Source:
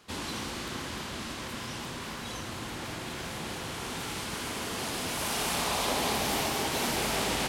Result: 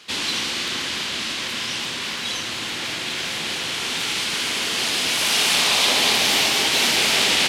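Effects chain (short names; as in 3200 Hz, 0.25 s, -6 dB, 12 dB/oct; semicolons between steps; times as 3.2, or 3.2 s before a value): weighting filter D; gain +5 dB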